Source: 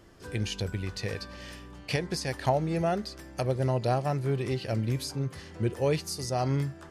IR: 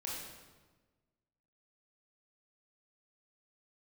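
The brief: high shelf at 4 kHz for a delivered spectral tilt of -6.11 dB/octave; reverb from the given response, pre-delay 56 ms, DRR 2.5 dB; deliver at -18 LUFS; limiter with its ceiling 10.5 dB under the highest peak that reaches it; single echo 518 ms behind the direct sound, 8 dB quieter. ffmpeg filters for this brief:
-filter_complex "[0:a]highshelf=f=4000:g=-7,alimiter=limit=0.0631:level=0:latency=1,aecho=1:1:518:0.398,asplit=2[s0][s1];[1:a]atrim=start_sample=2205,adelay=56[s2];[s1][s2]afir=irnorm=-1:irlink=0,volume=0.708[s3];[s0][s3]amix=inputs=2:normalize=0,volume=5.01"

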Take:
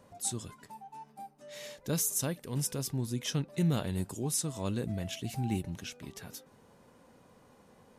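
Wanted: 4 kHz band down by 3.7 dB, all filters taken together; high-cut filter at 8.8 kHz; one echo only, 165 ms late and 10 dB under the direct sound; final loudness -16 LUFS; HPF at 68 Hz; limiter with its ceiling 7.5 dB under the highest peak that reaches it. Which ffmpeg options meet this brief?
-af "highpass=68,lowpass=8800,equalizer=f=4000:t=o:g=-5,alimiter=level_in=1.58:limit=0.0631:level=0:latency=1,volume=0.631,aecho=1:1:165:0.316,volume=14.1"

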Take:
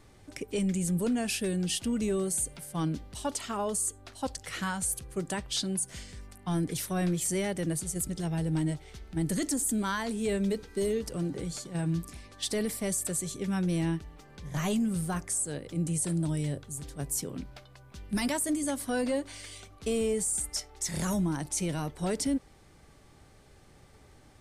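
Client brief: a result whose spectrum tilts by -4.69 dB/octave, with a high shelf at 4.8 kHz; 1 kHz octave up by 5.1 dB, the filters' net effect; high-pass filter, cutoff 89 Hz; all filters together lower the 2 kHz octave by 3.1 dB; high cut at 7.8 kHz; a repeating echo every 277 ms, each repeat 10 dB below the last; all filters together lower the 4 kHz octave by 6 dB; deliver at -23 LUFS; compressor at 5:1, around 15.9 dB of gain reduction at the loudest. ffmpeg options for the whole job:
-af "highpass=89,lowpass=7800,equalizer=f=1000:t=o:g=8,equalizer=f=2000:t=o:g=-6,equalizer=f=4000:t=o:g=-8,highshelf=f=4800:g=3,acompressor=threshold=0.00631:ratio=5,aecho=1:1:277|554|831|1108:0.316|0.101|0.0324|0.0104,volume=13.3"

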